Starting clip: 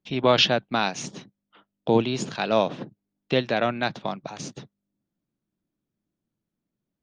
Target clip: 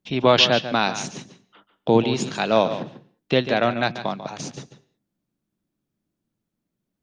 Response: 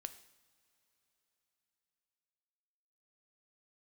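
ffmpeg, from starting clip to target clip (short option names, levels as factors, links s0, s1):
-filter_complex "[0:a]asplit=2[s0][s1];[1:a]atrim=start_sample=2205,afade=t=out:st=0.27:d=0.01,atrim=end_sample=12348,adelay=143[s2];[s1][s2]afir=irnorm=-1:irlink=0,volume=0.422[s3];[s0][s3]amix=inputs=2:normalize=0,volume=1.41"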